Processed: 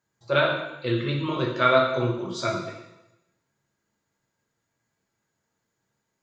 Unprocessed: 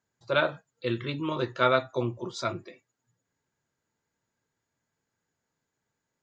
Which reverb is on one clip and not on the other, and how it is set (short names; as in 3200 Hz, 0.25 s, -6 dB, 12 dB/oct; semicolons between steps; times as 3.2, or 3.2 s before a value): plate-style reverb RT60 0.95 s, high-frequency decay 1×, DRR -0.5 dB; gain +1 dB